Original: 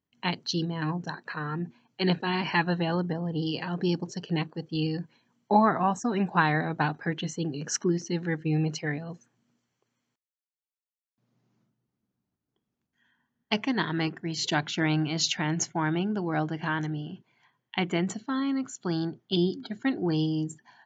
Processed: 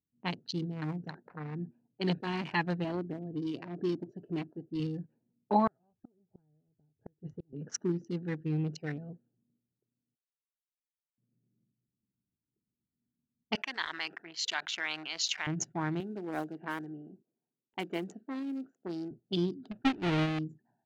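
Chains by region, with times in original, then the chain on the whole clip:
0:02.84–0:04.80: high-shelf EQ 2,200 Hz −6 dB + comb filter 3 ms, depth 47%
0:05.67–0:07.53: low shelf with overshoot 130 Hz +12.5 dB, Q 3 + comb filter 4.8 ms, depth 31% + gate with flip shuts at −23 dBFS, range −35 dB
0:13.55–0:15.47: high-pass filter 1,200 Hz + envelope flattener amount 50%
0:16.00–0:19.11: one scale factor per block 5 bits + Chebyshev high-pass filter 320 Hz
0:19.71–0:20.39: each half-wave held at its own peak + low-pass with resonance 3,100 Hz, resonance Q 1.6 + expander for the loud parts, over −31 dBFS
whole clip: adaptive Wiener filter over 41 samples; low-pass that shuts in the quiet parts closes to 370 Hz, open at −27.5 dBFS; level −5 dB

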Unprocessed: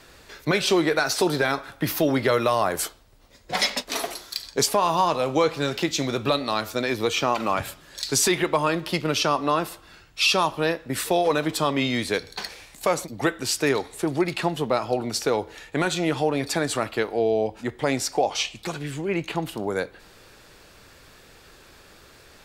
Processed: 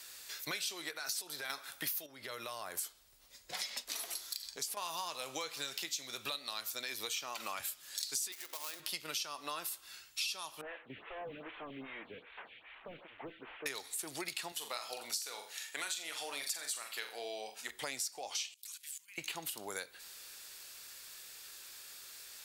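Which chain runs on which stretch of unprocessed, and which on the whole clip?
0:00.91–0:01.50: downward compressor 4 to 1, threshold −24 dBFS + multiband upward and downward expander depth 40%
0:02.06–0:04.77: spectral tilt −1.5 dB per octave + downward compressor 2.5 to 1, threshold −31 dBFS
0:08.32–0:08.80: gap after every zero crossing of 0.14 ms + high-pass filter 330 Hz + downward compressor 2 to 1, threshold −27 dBFS
0:10.61–0:13.66: linear delta modulator 16 kbit/s, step −39 dBFS + phaser with staggered stages 2.5 Hz
0:14.52–0:17.71: high-pass filter 720 Hz 6 dB per octave + flutter between parallel walls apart 7.2 metres, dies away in 0.33 s
0:18.54–0:19.18: Chebyshev band-stop filter 220–990 Hz, order 4 + first difference + output level in coarse steps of 17 dB
whole clip: first-order pre-emphasis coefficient 0.97; downward compressor 6 to 1, threshold −43 dBFS; level +6 dB

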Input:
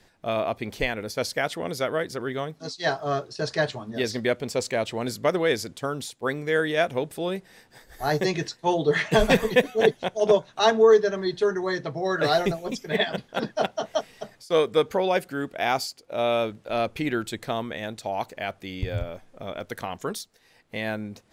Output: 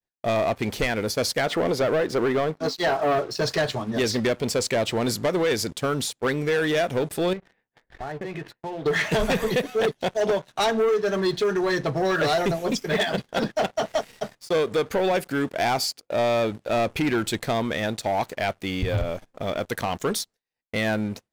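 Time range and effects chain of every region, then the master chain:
0:01.46–0:03.31: mid-hump overdrive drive 13 dB, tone 1,300 Hz, clips at −12.5 dBFS + parametric band 280 Hz +4.5 dB 2.2 octaves
0:07.33–0:08.86: low-pass filter 2,800 Hz 24 dB per octave + downward compressor 10 to 1, threshold −37 dBFS
whole clip: downward expander −44 dBFS; downward compressor 4 to 1, threshold −23 dBFS; leveller curve on the samples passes 3; level −3.5 dB

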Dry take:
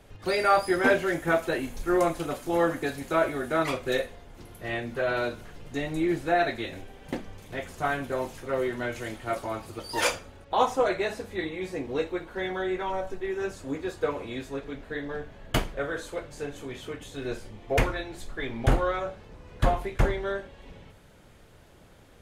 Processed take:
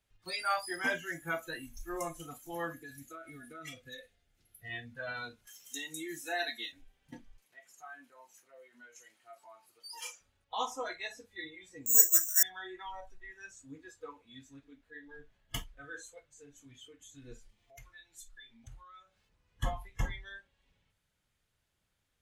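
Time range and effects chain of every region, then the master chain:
0:02.73–0:04.68: downward compressor 12 to 1, threshold −27 dBFS + parametric band 1,000 Hz −14.5 dB 0.28 octaves
0:05.47–0:06.72: high-pass filter 230 Hz + high-shelf EQ 4,500 Hz +10 dB + one half of a high-frequency compander encoder only
0:07.38–0:10.21: high-pass filter 300 Hz + notch filter 3,500 Hz, Q 14 + downward compressor 2 to 1, threshold −38 dBFS
0:11.86–0:12.43: low-pass with resonance 1,600 Hz, resonance Q 2.1 + bad sample-rate conversion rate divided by 6×, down filtered, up zero stuff
0:13.66–0:16.99: shaped tremolo triangle 1.4 Hz, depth 40% + upward compression, threshold −40 dBFS
0:17.49–0:19.29: high-shelf EQ 2,300 Hz +7 dB + mains-hum notches 50/100/150/200/250/300/350/400/450 Hz + downward compressor 3 to 1, threshold −41 dBFS
whole clip: noise reduction from a noise print of the clip's start 17 dB; guitar amp tone stack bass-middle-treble 5-5-5; level +4.5 dB

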